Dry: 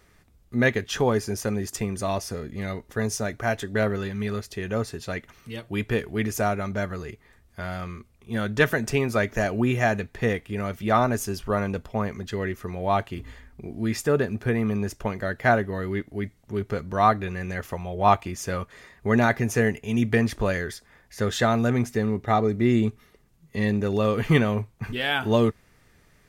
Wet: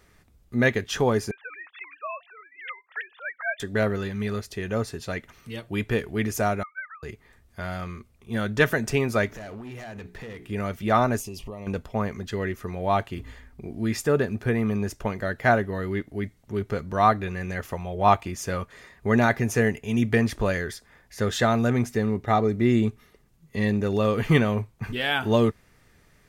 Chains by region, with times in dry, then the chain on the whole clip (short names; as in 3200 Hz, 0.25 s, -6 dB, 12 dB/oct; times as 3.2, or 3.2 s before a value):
1.31–3.6 sine-wave speech + HPF 940 Hz 24 dB/oct
6.63–7.03 sine-wave speech + steep high-pass 1200 Hz + air absorption 480 m
9.26–10.49 notches 60/120/180/240/300/360/420 Hz + compressor 20:1, threshold -32 dBFS + hard clip -35 dBFS
11.2–11.67 bell 2700 Hz +6 dB 0.26 oct + compressor 16:1, threshold -32 dBFS + Butterworth band-stop 1500 Hz, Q 1.6
whole clip: dry